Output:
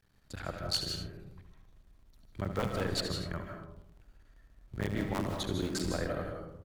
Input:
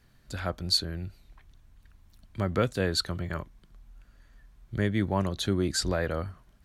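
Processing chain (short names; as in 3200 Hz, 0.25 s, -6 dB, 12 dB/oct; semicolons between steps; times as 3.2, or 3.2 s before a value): cycle switcher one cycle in 3, muted; on a send: early reflections 70 ms -12 dB, 80 ms -12 dB; on the sum: digital reverb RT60 0.75 s, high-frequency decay 0.3×, pre-delay 0.115 s, DRR 3.5 dB; gain -6 dB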